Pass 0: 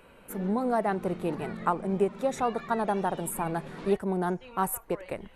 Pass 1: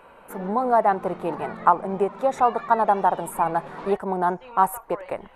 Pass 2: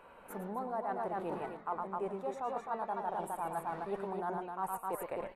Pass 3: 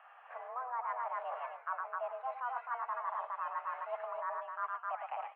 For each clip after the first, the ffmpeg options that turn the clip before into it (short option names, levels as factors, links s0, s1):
-af "equalizer=f=910:t=o:w=1.9:g=14.5,volume=0.708"
-af "aecho=1:1:110.8|259.5:0.398|0.562,areverse,acompressor=threshold=0.0447:ratio=6,areverse,volume=0.422"
-af "highpass=f=330:t=q:w=0.5412,highpass=f=330:t=q:w=1.307,lowpass=f=2700:t=q:w=0.5176,lowpass=f=2700:t=q:w=0.7071,lowpass=f=2700:t=q:w=1.932,afreqshift=250,volume=0.891"